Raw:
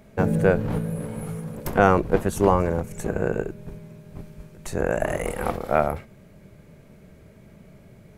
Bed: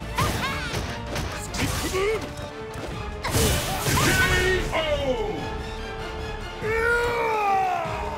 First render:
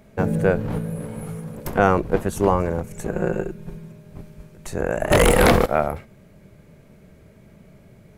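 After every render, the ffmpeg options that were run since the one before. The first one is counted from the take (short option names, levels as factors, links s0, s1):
-filter_complex "[0:a]asettb=1/sr,asplit=3[s0][s1][s2];[s0]atrim=end=3.124[s3];[s1]atrim=start=3.12:end=3.92,asetpts=PTS-STARTPTS,afade=t=in:d=0.004:c=qsin,afade=t=out:st=0.796:d=0.004:c=qsin,aecho=1:1:5.6:0.7,atrim=end_sample=35280[s4];[s2]atrim=start=3.916[s5];[s3][s4]acrossfade=d=0.004:c1=hsin:c2=qsin[s6];[s6][s5]acrossfade=d=0.004:c1=qsin:c2=hsin,asettb=1/sr,asplit=3[s7][s8][s9];[s7]atrim=end=5.114[s10];[s8]atrim=start=5.11:end=5.66,asetpts=PTS-STARTPTS,afade=t=in:d=0.004:c=qsin,afade=t=out:st=0.546:d=0.004:c=qsin,aeval=exprs='0.376*sin(PI/2*4.47*val(0)/0.376)':c=same[s11];[s9]atrim=start=5.656[s12];[s10][s11]acrossfade=d=0.004:c1=hsin:c2=qsin[s13];[s13][s12]acrossfade=d=0.004:c1=qsin:c2=hsin"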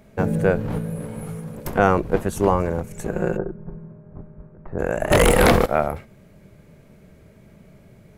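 -filter_complex "[0:a]asplit=3[s0][s1][s2];[s0]afade=t=out:st=3.36:d=0.02[s3];[s1]lowpass=f=1400:w=0.5412,lowpass=f=1400:w=1.3066,afade=t=in:st=3.36:d=0.02,afade=t=out:st=4.78:d=0.02[s4];[s2]afade=t=in:st=4.78:d=0.02[s5];[s3][s4][s5]amix=inputs=3:normalize=0"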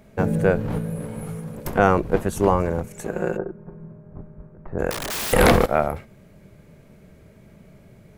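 -filter_complex "[0:a]asettb=1/sr,asplit=3[s0][s1][s2];[s0]atrim=end=2.884[s3];[s1]atrim=start=2.88:end=3.8,asetpts=PTS-STARTPTS,afade=t=in:d=0.004:c=qsin,afade=t=out:st=0.916:d=0.004:c=qsin,lowshelf=f=130:g=-12[s4];[s2]atrim=start=3.796[s5];[s3][s4]acrossfade=d=0.004:c1=hsin:c2=qsin[s6];[s6][s5]acrossfade=d=0.004:c1=qsin:c2=hsin,asettb=1/sr,asplit=3[s7][s8][s9];[s7]atrim=end=4.904[s10];[s8]atrim=start=4.9:end=5.33,asetpts=PTS-STARTPTS,afade=t=in:d=0.004:c=qsin,afade=t=out:st=0.426:d=0.004:c=qsin,aeval=exprs='(mod(14.1*val(0)+1,2)-1)/14.1':c=same[s11];[s9]atrim=start=5.326[s12];[s10][s11]acrossfade=d=0.004:c1=hsin:c2=qsin[s13];[s13][s12]acrossfade=d=0.004:c1=qsin:c2=hsin"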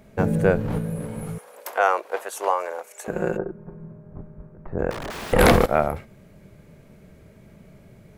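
-filter_complex "[0:a]asettb=1/sr,asplit=3[s0][s1][s2];[s0]atrim=end=1.384[s3];[s1]atrim=start=1.38:end=3.08,asetpts=PTS-STARTPTS,afade=t=in:d=0.004:c=qsin,afade=t=out:st=1.696:d=0.004:c=qsin,highpass=f=560:w=0.5412,highpass=f=560:w=1.3066[s4];[s2]atrim=start=3.076[s5];[s3][s4]acrossfade=d=0.004:c1=hsin:c2=qsin[s6];[s6][s5]acrossfade=d=0.004:c1=qsin:c2=hsin,asettb=1/sr,asplit=3[s7][s8][s9];[s7]atrim=end=4.754[s10];[s8]atrim=start=4.75:end=5.39,asetpts=PTS-STARTPTS,afade=t=in:d=0.004:c=qsin,afade=t=out:st=0.636:d=0.004:c=qsin,lowpass=f=1500:p=1[s11];[s9]atrim=start=5.386[s12];[s10][s11]acrossfade=d=0.004:c1=hsin:c2=qsin[s13];[s13][s12]acrossfade=d=0.004:c1=qsin:c2=hsin"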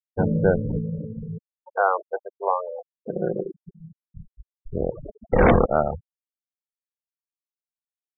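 -af "highshelf=f=3400:g=-11,afftfilt=real='re*gte(hypot(re,im),0.1)':imag='im*gte(hypot(re,im),0.1)':win_size=1024:overlap=0.75"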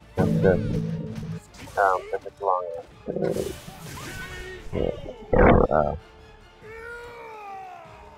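-filter_complex "[1:a]volume=0.15[s0];[0:a][s0]amix=inputs=2:normalize=0"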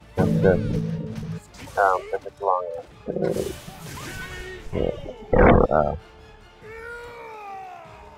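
-af "volume=1.19"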